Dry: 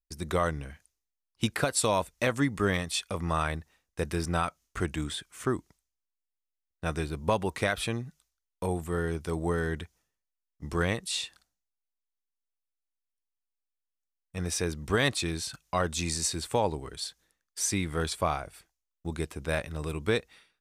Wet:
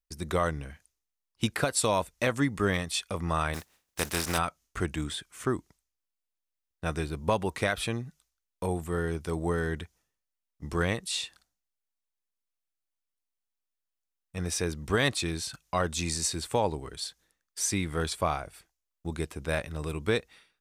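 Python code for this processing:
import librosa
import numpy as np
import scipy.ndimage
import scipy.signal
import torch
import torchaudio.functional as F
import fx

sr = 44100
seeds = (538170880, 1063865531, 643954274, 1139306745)

y = fx.spec_flatten(x, sr, power=0.45, at=(3.53, 4.37), fade=0.02)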